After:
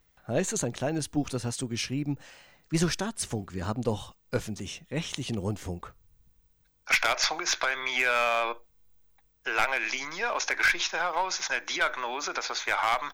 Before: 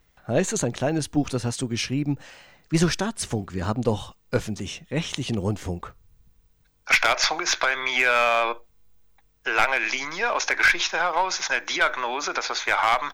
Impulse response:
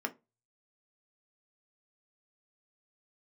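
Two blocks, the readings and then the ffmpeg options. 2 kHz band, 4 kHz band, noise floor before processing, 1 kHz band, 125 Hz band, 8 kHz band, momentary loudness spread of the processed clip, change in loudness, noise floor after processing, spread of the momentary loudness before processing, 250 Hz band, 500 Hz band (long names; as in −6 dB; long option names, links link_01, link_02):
−5.0 dB, −4.5 dB, −63 dBFS, −5.5 dB, −5.5 dB, −3.0 dB, 11 LU, −5.0 dB, −67 dBFS, 10 LU, −5.5 dB, −5.5 dB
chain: -af "highshelf=frequency=7800:gain=6,volume=-5.5dB"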